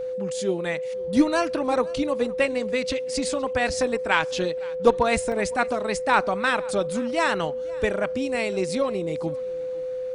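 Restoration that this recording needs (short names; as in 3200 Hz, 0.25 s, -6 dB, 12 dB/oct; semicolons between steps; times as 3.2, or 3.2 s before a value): notch 510 Hz, Q 30; interpolate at 5.32, 1.9 ms; inverse comb 0.513 s -22.5 dB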